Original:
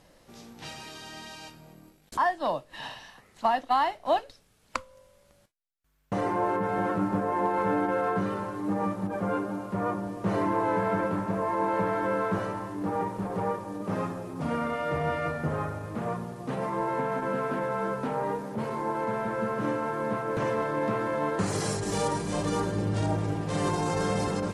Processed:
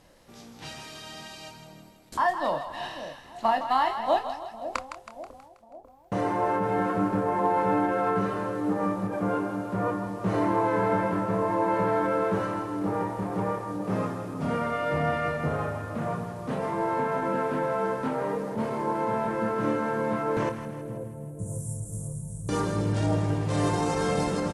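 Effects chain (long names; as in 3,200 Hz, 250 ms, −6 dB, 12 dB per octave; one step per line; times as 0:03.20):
0:20.49–0:22.49: inverse Chebyshev band-stop filter 290–4,800 Hz, stop band 40 dB
double-tracking delay 27 ms −8 dB
echo with a time of its own for lows and highs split 680 Hz, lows 545 ms, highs 161 ms, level −9 dB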